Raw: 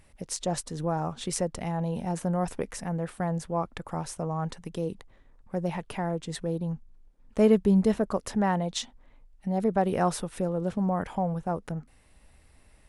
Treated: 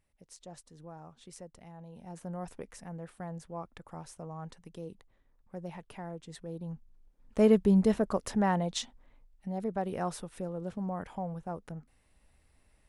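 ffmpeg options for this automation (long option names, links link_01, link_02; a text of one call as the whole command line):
ffmpeg -i in.wav -af "volume=-2dB,afade=type=in:start_time=1.92:duration=0.4:silence=0.421697,afade=type=in:start_time=6.46:duration=1.03:silence=0.334965,afade=type=out:start_time=8.64:duration=0.97:silence=0.473151" out.wav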